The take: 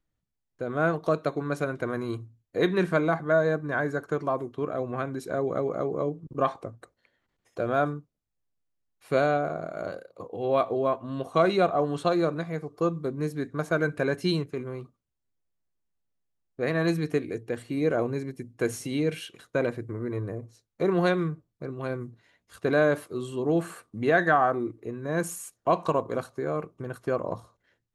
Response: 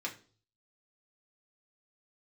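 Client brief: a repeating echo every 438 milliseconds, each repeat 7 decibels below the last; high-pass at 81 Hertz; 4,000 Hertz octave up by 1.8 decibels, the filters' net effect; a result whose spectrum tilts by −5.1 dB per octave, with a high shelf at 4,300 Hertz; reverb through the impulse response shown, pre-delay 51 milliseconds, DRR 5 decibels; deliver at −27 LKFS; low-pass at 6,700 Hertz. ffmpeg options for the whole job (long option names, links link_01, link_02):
-filter_complex "[0:a]highpass=81,lowpass=6700,equalizer=frequency=4000:width_type=o:gain=5.5,highshelf=frequency=4300:gain=-6.5,aecho=1:1:438|876|1314|1752|2190:0.447|0.201|0.0905|0.0407|0.0183,asplit=2[link_01][link_02];[1:a]atrim=start_sample=2205,adelay=51[link_03];[link_02][link_03]afir=irnorm=-1:irlink=0,volume=-7.5dB[link_04];[link_01][link_04]amix=inputs=2:normalize=0,volume=-0.5dB"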